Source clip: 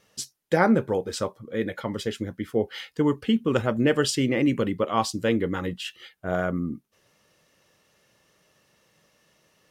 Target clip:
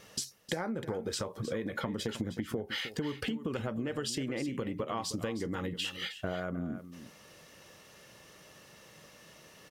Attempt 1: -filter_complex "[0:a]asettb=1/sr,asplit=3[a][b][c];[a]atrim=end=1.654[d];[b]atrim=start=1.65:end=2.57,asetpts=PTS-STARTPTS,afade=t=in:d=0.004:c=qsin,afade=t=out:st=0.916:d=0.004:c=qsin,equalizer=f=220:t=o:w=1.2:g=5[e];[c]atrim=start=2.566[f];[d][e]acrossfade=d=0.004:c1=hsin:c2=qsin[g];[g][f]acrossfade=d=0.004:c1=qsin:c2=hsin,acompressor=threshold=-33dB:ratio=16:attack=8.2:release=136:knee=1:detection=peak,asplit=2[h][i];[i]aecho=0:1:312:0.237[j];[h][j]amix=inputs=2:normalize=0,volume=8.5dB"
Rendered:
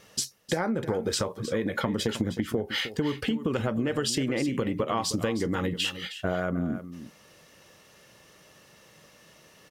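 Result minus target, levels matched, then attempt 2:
compressor: peak gain reduction -7.5 dB
-filter_complex "[0:a]asettb=1/sr,asplit=3[a][b][c];[a]atrim=end=1.654[d];[b]atrim=start=1.65:end=2.57,asetpts=PTS-STARTPTS,afade=t=in:d=0.004:c=qsin,afade=t=out:st=0.916:d=0.004:c=qsin,equalizer=f=220:t=o:w=1.2:g=5[e];[c]atrim=start=2.566[f];[d][e]acrossfade=d=0.004:c1=hsin:c2=qsin[g];[g][f]acrossfade=d=0.004:c1=qsin:c2=hsin,acompressor=threshold=-41dB:ratio=16:attack=8.2:release=136:knee=1:detection=peak,asplit=2[h][i];[i]aecho=0:1:312:0.237[j];[h][j]amix=inputs=2:normalize=0,volume=8.5dB"

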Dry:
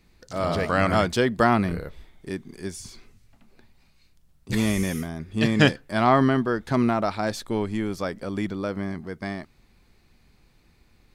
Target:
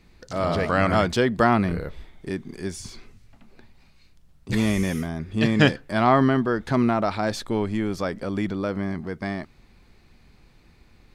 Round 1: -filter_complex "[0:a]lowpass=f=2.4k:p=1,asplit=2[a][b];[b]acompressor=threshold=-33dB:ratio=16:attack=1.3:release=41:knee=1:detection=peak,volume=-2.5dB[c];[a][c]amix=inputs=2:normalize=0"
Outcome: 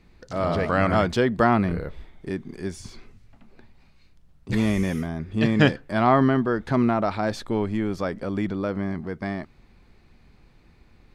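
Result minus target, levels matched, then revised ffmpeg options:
4000 Hz band -3.0 dB
-filter_complex "[0:a]lowpass=f=5.5k:p=1,asplit=2[a][b];[b]acompressor=threshold=-33dB:ratio=16:attack=1.3:release=41:knee=1:detection=peak,volume=-2.5dB[c];[a][c]amix=inputs=2:normalize=0"

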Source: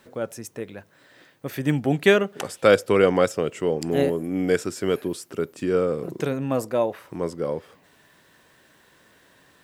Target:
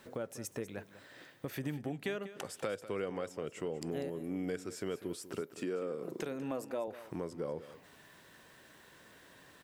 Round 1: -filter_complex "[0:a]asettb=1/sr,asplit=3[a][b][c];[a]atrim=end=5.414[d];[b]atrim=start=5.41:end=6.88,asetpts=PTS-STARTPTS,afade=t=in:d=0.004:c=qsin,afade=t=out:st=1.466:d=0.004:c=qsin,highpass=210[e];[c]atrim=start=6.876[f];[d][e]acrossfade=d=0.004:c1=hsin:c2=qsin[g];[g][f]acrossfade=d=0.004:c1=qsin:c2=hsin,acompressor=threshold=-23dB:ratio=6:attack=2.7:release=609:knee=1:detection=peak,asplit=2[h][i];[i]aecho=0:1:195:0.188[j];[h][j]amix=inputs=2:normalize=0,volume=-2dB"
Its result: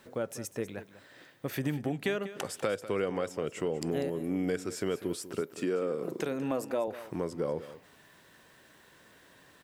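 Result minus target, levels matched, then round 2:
compressor: peak gain reduction -6.5 dB
-filter_complex "[0:a]asettb=1/sr,asplit=3[a][b][c];[a]atrim=end=5.414[d];[b]atrim=start=5.41:end=6.88,asetpts=PTS-STARTPTS,afade=t=in:d=0.004:c=qsin,afade=t=out:st=1.466:d=0.004:c=qsin,highpass=210[e];[c]atrim=start=6.876[f];[d][e]acrossfade=d=0.004:c1=hsin:c2=qsin[g];[g][f]acrossfade=d=0.004:c1=qsin:c2=hsin,acompressor=threshold=-30.5dB:ratio=6:attack=2.7:release=609:knee=1:detection=peak,asplit=2[h][i];[i]aecho=0:1:195:0.188[j];[h][j]amix=inputs=2:normalize=0,volume=-2dB"

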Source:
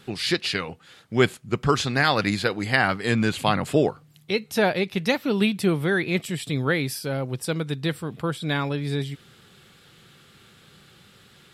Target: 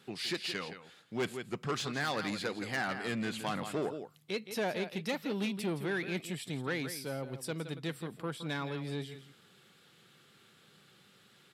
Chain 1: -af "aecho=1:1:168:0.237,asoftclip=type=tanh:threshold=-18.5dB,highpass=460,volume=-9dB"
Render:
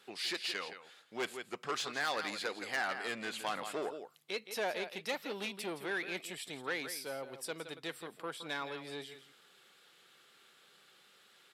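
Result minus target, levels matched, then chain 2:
125 Hz band -14.0 dB
-af "aecho=1:1:168:0.237,asoftclip=type=tanh:threshold=-18.5dB,highpass=150,volume=-9dB"

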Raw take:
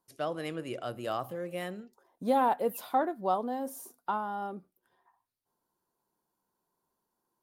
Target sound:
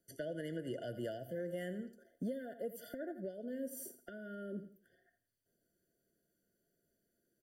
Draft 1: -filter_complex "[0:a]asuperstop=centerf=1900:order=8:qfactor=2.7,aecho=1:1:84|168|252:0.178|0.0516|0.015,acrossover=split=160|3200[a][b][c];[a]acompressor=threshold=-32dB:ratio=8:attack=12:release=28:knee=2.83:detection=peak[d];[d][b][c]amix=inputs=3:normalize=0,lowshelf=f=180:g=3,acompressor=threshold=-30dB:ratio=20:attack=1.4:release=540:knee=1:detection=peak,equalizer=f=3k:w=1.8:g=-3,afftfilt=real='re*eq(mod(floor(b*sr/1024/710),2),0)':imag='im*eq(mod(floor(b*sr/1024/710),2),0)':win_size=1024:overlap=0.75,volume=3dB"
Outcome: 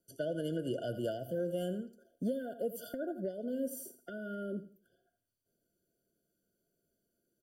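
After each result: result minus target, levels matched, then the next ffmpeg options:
compressor: peak gain reduction -5.5 dB; 2000 Hz band -3.5 dB
-filter_complex "[0:a]asuperstop=centerf=1900:order=8:qfactor=2.7,aecho=1:1:84|168|252:0.178|0.0516|0.015,acrossover=split=160|3200[a][b][c];[a]acompressor=threshold=-32dB:ratio=8:attack=12:release=28:knee=2.83:detection=peak[d];[d][b][c]amix=inputs=3:normalize=0,lowshelf=f=180:g=3,acompressor=threshold=-36dB:ratio=20:attack=1.4:release=540:knee=1:detection=peak,equalizer=f=3k:w=1.8:g=-3,afftfilt=real='re*eq(mod(floor(b*sr/1024/710),2),0)':imag='im*eq(mod(floor(b*sr/1024/710),2),0)':win_size=1024:overlap=0.75,volume=3dB"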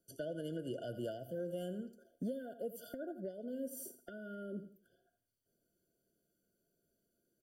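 2000 Hz band -3.5 dB
-filter_complex "[0:a]aecho=1:1:84|168|252:0.178|0.0516|0.015,acrossover=split=160|3200[a][b][c];[a]acompressor=threshold=-32dB:ratio=8:attack=12:release=28:knee=2.83:detection=peak[d];[d][b][c]amix=inputs=3:normalize=0,lowshelf=f=180:g=3,acompressor=threshold=-36dB:ratio=20:attack=1.4:release=540:knee=1:detection=peak,equalizer=f=3k:w=1.8:g=-3,afftfilt=real='re*eq(mod(floor(b*sr/1024/710),2),0)':imag='im*eq(mod(floor(b*sr/1024/710),2),0)':win_size=1024:overlap=0.75,volume=3dB"

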